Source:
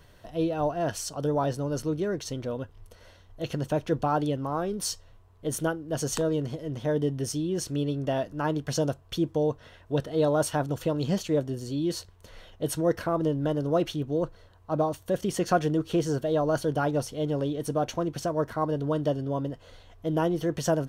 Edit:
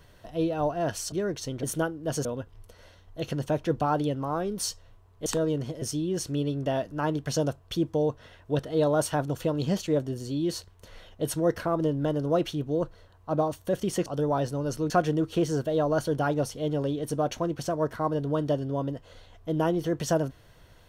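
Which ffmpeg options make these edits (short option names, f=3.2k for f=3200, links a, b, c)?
-filter_complex "[0:a]asplit=8[a][b][c][d][e][f][g][h];[a]atrim=end=1.122[i];[b]atrim=start=1.958:end=2.472[j];[c]atrim=start=5.478:end=6.102[k];[d]atrim=start=2.468:end=5.482[l];[e]atrim=start=6.098:end=6.662[m];[f]atrim=start=7.228:end=15.472[n];[g]atrim=start=1.118:end=1.962[o];[h]atrim=start=15.468[p];[i][j]acrossfade=d=0.004:c1=hsin:c2=hsin[q];[q][k]acrossfade=d=0.004:c1=hsin:c2=hsin[r];[r][l]acrossfade=d=0.004:c1=hsin:c2=hsin[s];[s][m]acrossfade=d=0.004:c1=hsin:c2=hsin[t];[t][n]acrossfade=d=0.004:c1=hsin:c2=hsin[u];[u][o]acrossfade=d=0.004:c1=hsin:c2=hsin[v];[v][p]acrossfade=d=0.004:c1=hsin:c2=hsin"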